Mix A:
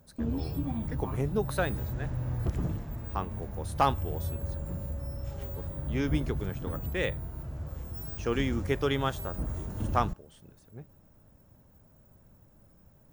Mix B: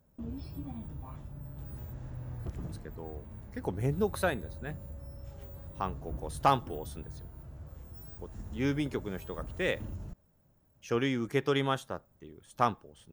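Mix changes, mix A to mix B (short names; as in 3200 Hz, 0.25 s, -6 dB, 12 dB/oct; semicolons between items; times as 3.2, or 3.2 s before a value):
speech: entry +2.65 s; background -8.5 dB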